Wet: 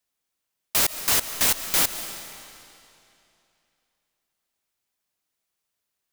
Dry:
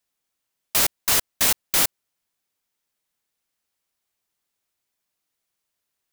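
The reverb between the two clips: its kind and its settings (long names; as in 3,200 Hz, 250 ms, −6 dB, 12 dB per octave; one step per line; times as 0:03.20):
comb and all-pass reverb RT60 2.8 s, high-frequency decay 0.95×, pre-delay 100 ms, DRR 9.5 dB
level −1.5 dB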